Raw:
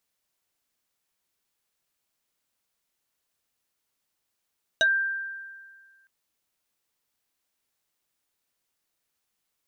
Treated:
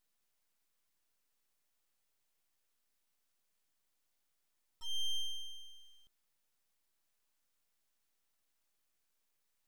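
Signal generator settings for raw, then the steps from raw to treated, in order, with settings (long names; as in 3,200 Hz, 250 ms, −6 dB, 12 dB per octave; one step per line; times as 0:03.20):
two-operator FM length 1.26 s, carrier 1,580 Hz, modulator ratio 1.41, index 1.7, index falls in 0.10 s exponential, decay 1.73 s, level −16.5 dB
volume swells 372 ms
full-wave rectification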